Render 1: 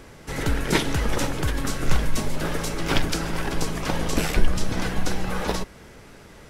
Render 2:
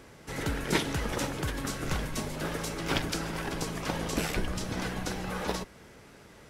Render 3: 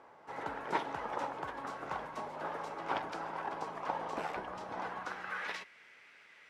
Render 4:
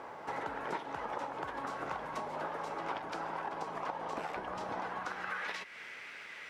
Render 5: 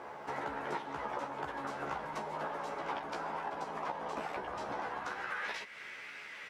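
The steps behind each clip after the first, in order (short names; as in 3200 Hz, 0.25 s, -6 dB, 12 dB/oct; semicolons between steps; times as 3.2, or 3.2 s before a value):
HPF 70 Hz 6 dB/oct; gain -5.5 dB
band-pass sweep 890 Hz -> 2200 Hz, 4.85–5.59; gain +3.5 dB
compressor 6:1, threshold -48 dBFS, peak gain reduction 19 dB; gain +11.5 dB
doubler 14 ms -3 dB; gain -1.5 dB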